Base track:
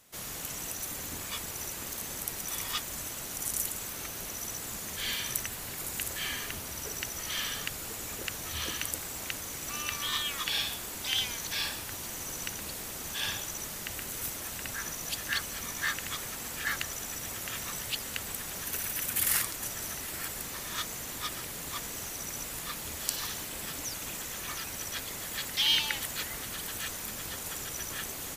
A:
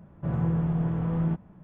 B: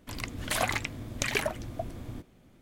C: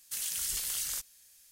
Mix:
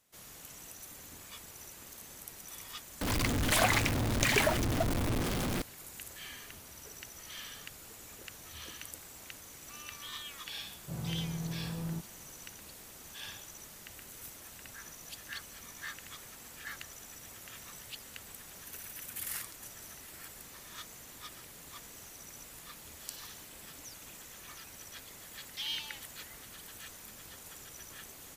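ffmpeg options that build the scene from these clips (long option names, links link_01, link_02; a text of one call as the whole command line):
ffmpeg -i bed.wav -i cue0.wav -i cue1.wav -filter_complex "[0:a]volume=-11.5dB[link_01];[2:a]aeval=exprs='val(0)+0.5*0.0562*sgn(val(0))':channel_layout=same[link_02];[link_01]asplit=2[link_03][link_04];[link_03]atrim=end=3.014[link_05];[link_02]atrim=end=2.61,asetpts=PTS-STARTPTS,volume=-2dB[link_06];[link_04]atrim=start=5.616[link_07];[1:a]atrim=end=1.63,asetpts=PTS-STARTPTS,volume=-11.5dB,afade=type=in:duration=0.004:curve=hsin,afade=type=out:start_time=1.626:duration=0.004:curve=hsin,adelay=10650[link_08];[link_05][link_06]acrossfade=duration=0.004:curve1=hsin:curve2=hsin[link_09];[link_09][link_07]acrossfade=duration=0.004:curve1=hsin:curve2=hsin[link_10];[link_10][link_08]amix=inputs=2:normalize=0" out.wav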